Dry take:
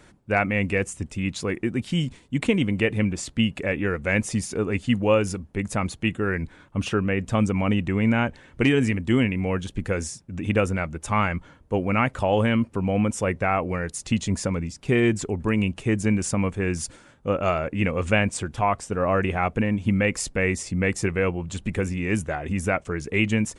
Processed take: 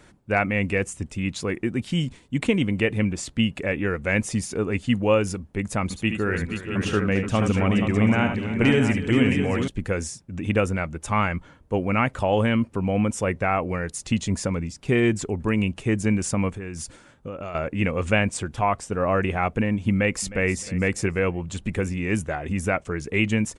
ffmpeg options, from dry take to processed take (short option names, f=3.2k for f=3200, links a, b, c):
-filter_complex "[0:a]asettb=1/sr,asplit=3[a][b][c];[a]atrim=end=5.834[d];[b]atrim=start=5.83:end=9.68,asetpts=PTS-STARTPTS,afade=t=in:d=0.004:c=qsin,afade=t=out:st=3.846:d=0.004:c=qsin,aecho=1:1:72|76|291|478|608|665:0.422|0.15|0.178|0.422|0.112|0.355,atrim=end_sample=169785[e];[c]atrim=start=9.676[f];[d][e]acrossfade=d=0.004:c1=hsin:c2=qsin[g];[g][f]acrossfade=d=0.004:c1=qsin:c2=hsin,asettb=1/sr,asplit=3[h][i][j];[h]atrim=end=16.494[k];[i]atrim=start=16.49:end=17.55,asetpts=PTS-STARTPTS,afade=t=in:d=0.004:c=qsin,afade=t=out:st=1.056:d=0.004:c=qsin,acompressor=threshold=-29dB:ratio=10:attack=3.2:release=140:knee=1:detection=peak[l];[j]atrim=start=17.546[m];[k][l]acrossfade=d=0.004:c1=hsin:c2=qsin[n];[n][m]acrossfade=d=0.004:c1=qsin:c2=hsin,asplit=2[o][p];[p]afade=t=in:st=19.91:d=0.01,afade=t=out:st=20.47:d=0.01,aecho=0:1:310|620|930:0.141254|0.0494388|0.0173036[q];[o][q]amix=inputs=2:normalize=0"